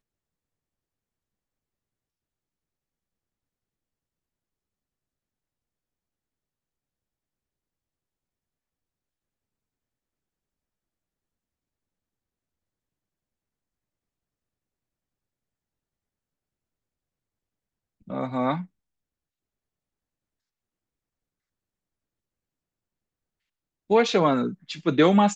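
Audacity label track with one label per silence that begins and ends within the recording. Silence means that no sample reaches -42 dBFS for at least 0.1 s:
18.650000	23.900000	silence
24.540000	24.690000	silence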